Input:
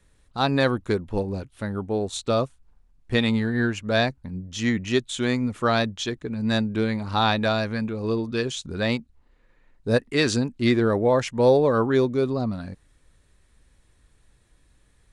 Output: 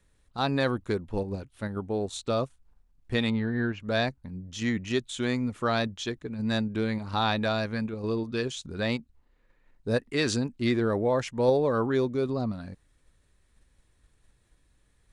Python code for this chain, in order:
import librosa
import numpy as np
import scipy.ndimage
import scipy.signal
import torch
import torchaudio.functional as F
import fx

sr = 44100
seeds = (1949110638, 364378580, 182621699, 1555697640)

p1 = fx.level_steps(x, sr, step_db=14)
p2 = x + (p1 * librosa.db_to_amplitude(-2.0))
p3 = fx.air_absorb(p2, sr, metres=220.0, at=(3.3, 3.8))
y = p3 * librosa.db_to_amplitude(-7.5)